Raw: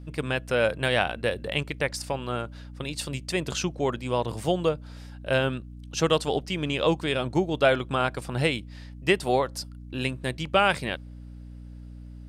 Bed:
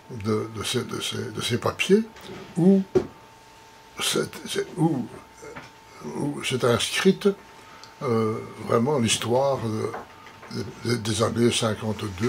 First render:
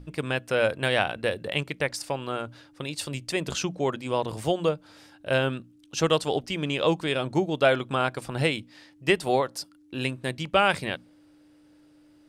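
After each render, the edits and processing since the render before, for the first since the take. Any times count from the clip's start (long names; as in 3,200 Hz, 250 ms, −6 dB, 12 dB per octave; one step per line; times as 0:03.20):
mains-hum notches 60/120/180/240 Hz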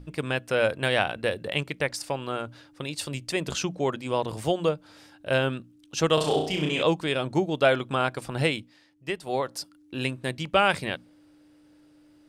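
0:06.14–0:06.83: flutter between parallel walls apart 5.6 metres, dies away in 0.57 s
0:08.54–0:09.51: duck −9 dB, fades 0.25 s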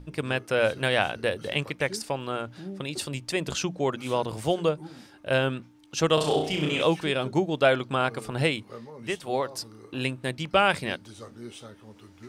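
mix in bed −21 dB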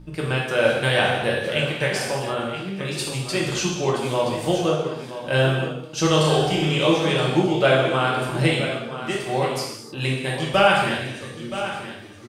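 on a send: single-tap delay 974 ms −11.5 dB
on the sum: reverb whose tail is shaped and stops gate 340 ms falling, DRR −3.5 dB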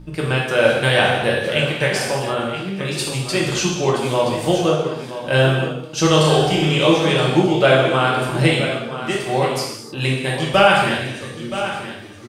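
level +4 dB
brickwall limiter −2 dBFS, peak gain reduction 1 dB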